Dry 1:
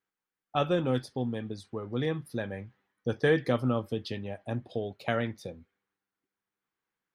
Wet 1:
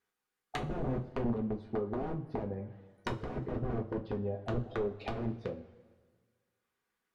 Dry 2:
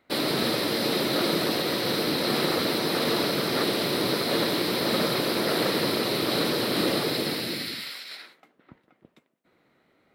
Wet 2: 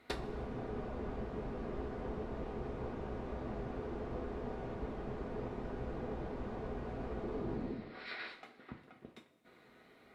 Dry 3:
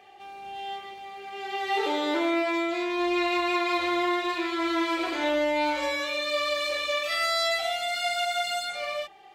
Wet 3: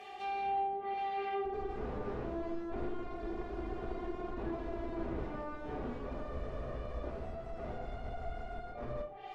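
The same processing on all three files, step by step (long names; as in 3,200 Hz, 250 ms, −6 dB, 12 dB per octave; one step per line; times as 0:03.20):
wrap-around overflow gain 26.5 dB
treble cut that deepens with the level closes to 470 Hz, closed at −32 dBFS
coupled-rooms reverb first 0.24 s, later 1.6 s, from −18 dB, DRR 1.5 dB
level +1.5 dB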